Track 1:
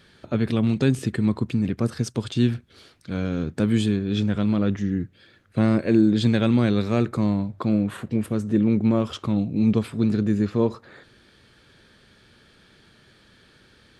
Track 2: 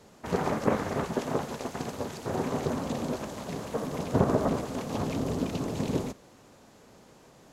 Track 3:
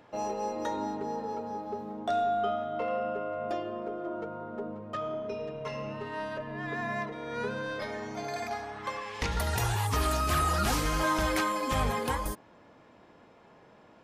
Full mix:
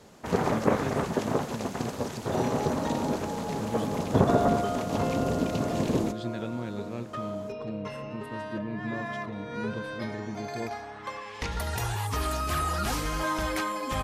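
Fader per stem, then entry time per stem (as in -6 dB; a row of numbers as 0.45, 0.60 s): -15.5, +2.0, -1.5 dB; 0.00, 0.00, 2.20 s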